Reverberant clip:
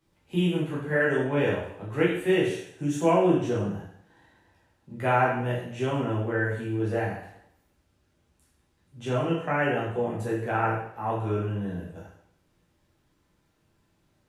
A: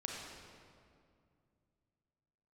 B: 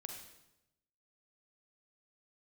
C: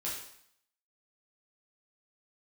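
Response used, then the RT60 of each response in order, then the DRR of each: C; 2.3 s, 0.90 s, 0.65 s; -2.0 dB, 2.5 dB, -6.5 dB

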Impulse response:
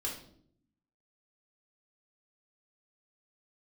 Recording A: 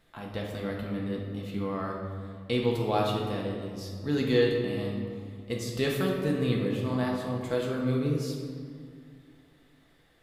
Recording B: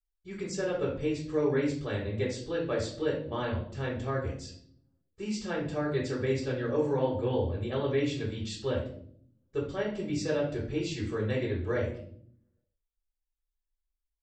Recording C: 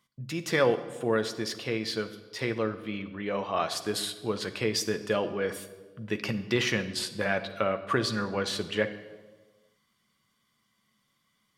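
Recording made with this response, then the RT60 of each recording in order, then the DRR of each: B; 2.1 s, 0.65 s, 1.3 s; -2.0 dB, -4.0 dB, 8.0 dB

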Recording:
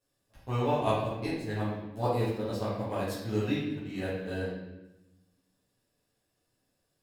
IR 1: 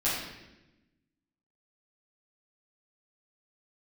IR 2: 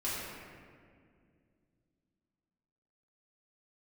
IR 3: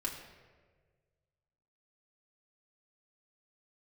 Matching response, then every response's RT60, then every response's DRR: 1; 1.0 s, 2.2 s, 1.5 s; -11.0 dB, -9.5 dB, -3.0 dB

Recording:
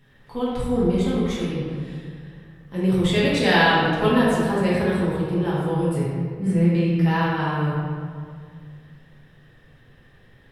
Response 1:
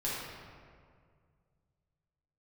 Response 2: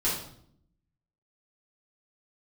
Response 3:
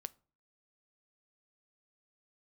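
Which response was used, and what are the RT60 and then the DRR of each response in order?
1; 2.0 s, 0.65 s, 0.40 s; -8.5 dB, -8.5 dB, 15.0 dB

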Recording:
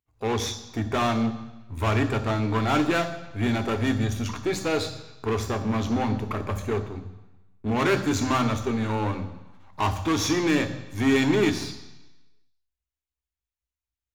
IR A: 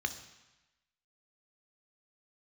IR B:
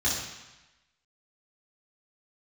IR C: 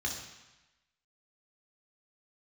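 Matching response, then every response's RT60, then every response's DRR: A; 1.0 s, 1.0 s, 1.0 s; 8.0 dB, -8.0 dB, -1.0 dB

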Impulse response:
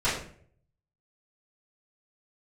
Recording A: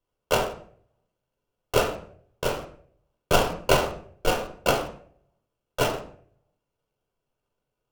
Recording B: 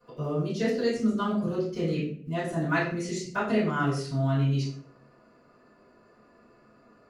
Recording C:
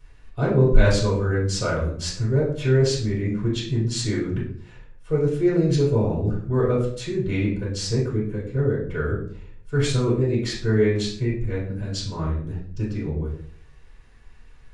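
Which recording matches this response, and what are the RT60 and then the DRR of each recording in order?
B; 0.55 s, 0.55 s, 0.55 s; 3.0 dB, -13.5 dB, -6.5 dB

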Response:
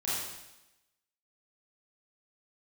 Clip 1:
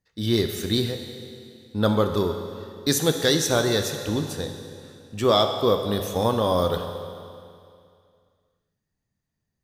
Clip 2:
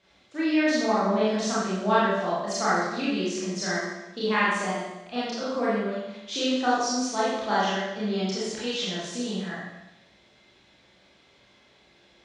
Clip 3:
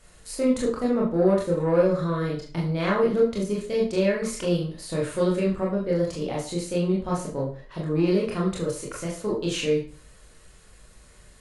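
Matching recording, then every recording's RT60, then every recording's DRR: 2; 2.4 s, 0.95 s, 0.40 s; 5.0 dB, -10.0 dB, -4.5 dB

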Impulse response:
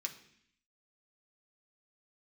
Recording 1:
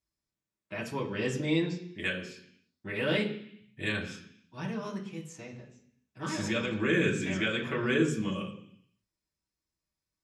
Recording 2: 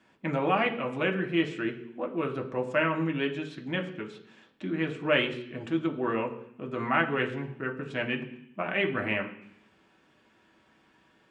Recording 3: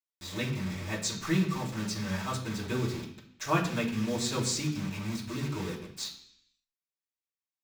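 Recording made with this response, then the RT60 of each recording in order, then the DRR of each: 2; 0.65 s, 0.65 s, 0.65 s; -3.5 dB, 2.0 dB, -10.0 dB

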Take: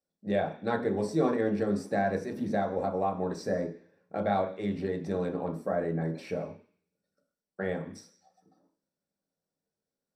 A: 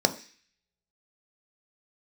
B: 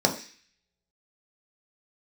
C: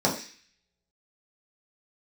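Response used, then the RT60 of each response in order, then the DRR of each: B; 0.40 s, 0.40 s, 0.40 s; 7.0 dB, 1.5 dB, -4.5 dB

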